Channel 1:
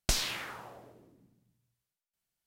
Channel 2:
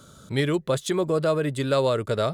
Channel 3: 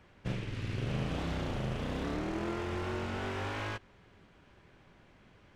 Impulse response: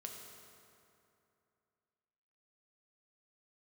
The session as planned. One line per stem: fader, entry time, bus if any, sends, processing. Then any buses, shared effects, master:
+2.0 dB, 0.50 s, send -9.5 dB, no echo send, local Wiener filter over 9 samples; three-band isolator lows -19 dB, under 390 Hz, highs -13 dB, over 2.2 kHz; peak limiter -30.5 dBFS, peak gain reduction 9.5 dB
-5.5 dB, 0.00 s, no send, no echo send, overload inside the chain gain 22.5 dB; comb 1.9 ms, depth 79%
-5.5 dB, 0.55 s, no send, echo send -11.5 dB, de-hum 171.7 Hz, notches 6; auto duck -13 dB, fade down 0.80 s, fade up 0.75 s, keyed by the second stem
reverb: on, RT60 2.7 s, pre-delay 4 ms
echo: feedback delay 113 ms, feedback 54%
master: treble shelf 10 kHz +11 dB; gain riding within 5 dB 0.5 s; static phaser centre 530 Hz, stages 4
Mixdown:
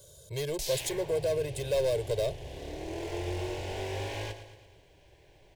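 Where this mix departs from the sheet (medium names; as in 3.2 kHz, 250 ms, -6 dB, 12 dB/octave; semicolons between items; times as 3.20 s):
stem 1: missing three-band isolator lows -19 dB, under 390 Hz, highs -13 dB, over 2.2 kHz; stem 3 -5.5 dB -> +4.0 dB; master: missing gain riding within 5 dB 0.5 s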